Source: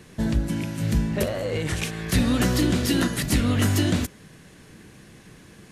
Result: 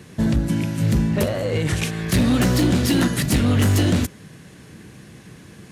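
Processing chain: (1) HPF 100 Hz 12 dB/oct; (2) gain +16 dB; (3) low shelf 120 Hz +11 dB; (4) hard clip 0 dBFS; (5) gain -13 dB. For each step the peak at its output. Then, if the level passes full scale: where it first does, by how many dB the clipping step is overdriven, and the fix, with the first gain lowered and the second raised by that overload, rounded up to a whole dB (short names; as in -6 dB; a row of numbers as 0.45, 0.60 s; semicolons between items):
-10.0, +6.0, +8.0, 0.0, -13.0 dBFS; step 2, 8.0 dB; step 2 +8 dB, step 5 -5 dB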